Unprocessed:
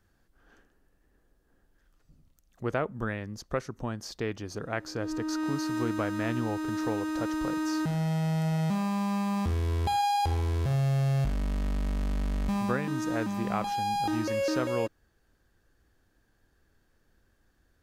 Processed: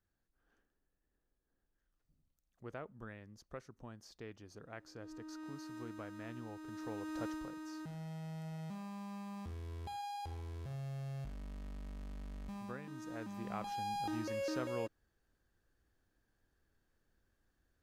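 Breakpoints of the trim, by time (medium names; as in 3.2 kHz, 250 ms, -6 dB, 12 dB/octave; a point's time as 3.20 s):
6.61 s -17 dB
7.26 s -9 dB
7.52 s -17 dB
12.92 s -17 dB
13.78 s -10 dB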